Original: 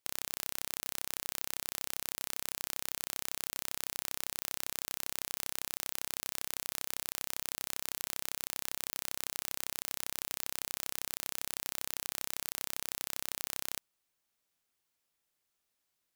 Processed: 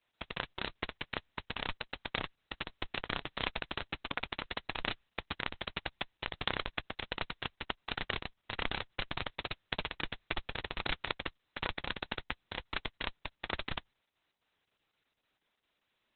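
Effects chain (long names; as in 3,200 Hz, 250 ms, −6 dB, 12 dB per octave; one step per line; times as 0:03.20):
sample-rate reduction 18,000 Hz, jitter 20%
level +3 dB
Opus 6 kbit/s 48,000 Hz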